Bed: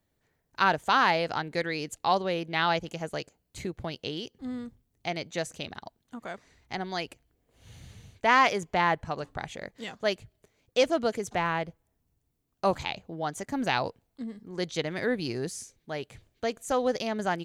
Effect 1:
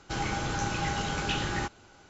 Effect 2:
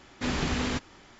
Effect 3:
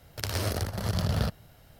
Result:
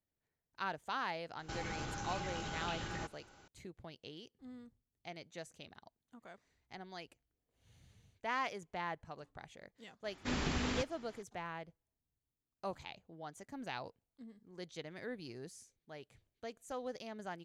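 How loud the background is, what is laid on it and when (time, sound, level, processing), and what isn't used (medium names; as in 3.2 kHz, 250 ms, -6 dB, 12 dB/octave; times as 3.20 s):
bed -16 dB
1.39 s: add 1 -6 dB + peak limiter -27.5 dBFS
10.04 s: add 2 -7 dB
not used: 3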